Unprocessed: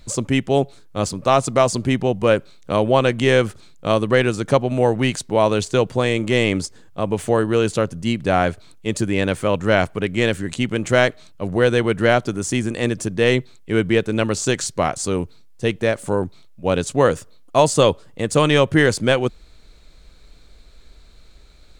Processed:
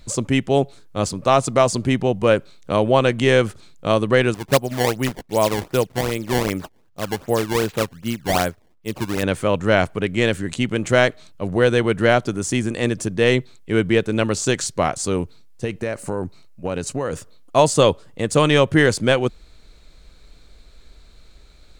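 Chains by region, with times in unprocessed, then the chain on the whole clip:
4.34–9.23 s: decimation with a swept rate 20×, swing 160% 2.6 Hz + upward expansion, over -34 dBFS
15.64–17.13 s: band-stop 3.4 kHz, Q 5.1 + compression 10:1, threshold -19 dBFS
whole clip: none

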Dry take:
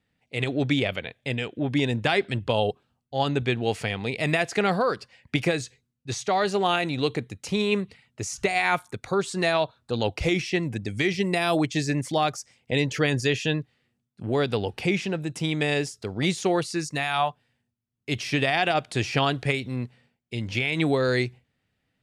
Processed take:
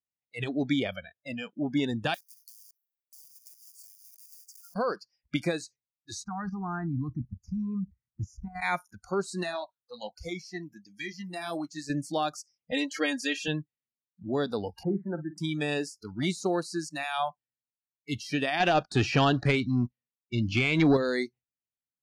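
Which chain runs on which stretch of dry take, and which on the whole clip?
2.14–4.76 s: block-companded coder 3-bit + differentiator + compression, threshold -40 dBFS
6.24–8.62 s: RIAA curve playback + level held to a coarse grid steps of 12 dB + static phaser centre 1.3 kHz, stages 4
9.43–11.90 s: bass shelf 430 Hz -6 dB + flange 1.1 Hz, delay 0.6 ms, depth 8.2 ms, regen -47%
12.72–13.48 s: high-pass 420 Hz 6 dB/octave + comb 3.7 ms, depth 83%
14.83–15.38 s: steep low-pass 1.9 kHz 96 dB/octave + doubling 50 ms -13.5 dB
18.60–20.97 s: waveshaping leveller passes 2 + distance through air 74 m
whole clip: spectral noise reduction 27 dB; dynamic bell 260 Hz, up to +4 dB, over -41 dBFS, Q 2.1; trim -5.5 dB

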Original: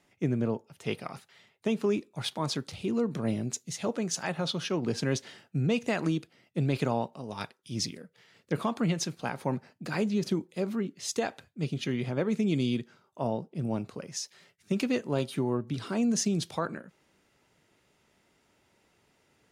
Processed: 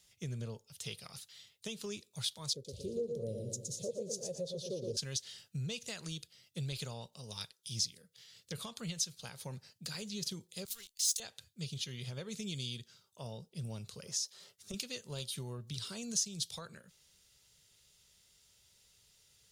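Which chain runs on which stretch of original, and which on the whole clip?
2.53–4.97 s: FFT filter 210 Hz 0 dB, 540 Hz +15 dB, 830 Hz -13 dB, 1.5 kHz -28 dB, 4.3 kHz -14 dB, 6.7 kHz -11 dB + feedback delay 116 ms, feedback 43%, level -5 dB
10.65–11.20 s: high-pass 180 Hz + differentiator + waveshaping leveller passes 3
14.06–14.74 s: high-order bell 550 Hz +12 dB 2.9 oct + compression 3:1, threshold -31 dBFS
whole clip: amplifier tone stack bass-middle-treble 10-0-10; compression 2:1, threshold -49 dBFS; high-order bell 1.3 kHz -12.5 dB 2.3 oct; trim +10 dB

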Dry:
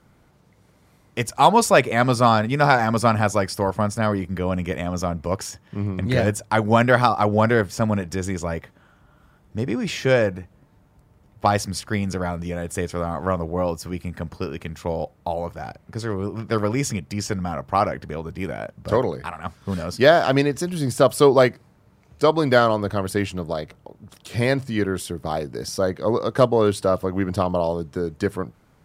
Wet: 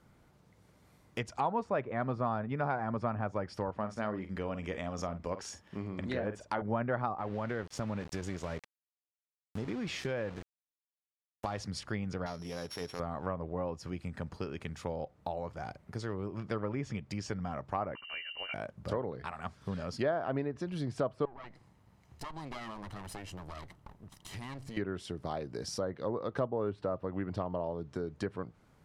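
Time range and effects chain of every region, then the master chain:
3.74–6.62 s: peaking EQ 120 Hz -12.5 dB 0.64 oct + doubling 47 ms -11.5 dB
7.18–11.58 s: compression 2.5:1, threshold -21 dBFS + small samples zeroed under -32.5 dBFS
12.26–13.00 s: sorted samples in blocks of 8 samples + bass shelf 150 Hz -11.5 dB + transient shaper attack -10 dB, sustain 0 dB
17.95–18.54 s: Chebyshev band-stop 150–540 Hz, order 4 + frequency inversion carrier 2.9 kHz
21.25–24.77 s: comb filter that takes the minimum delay 1 ms + compression 5:1, threshold -34 dBFS
whole clip: low-pass that closes with the level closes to 1.5 kHz, closed at -16 dBFS; compression 2:1, threshold -30 dBFS; trim -6.5 dB

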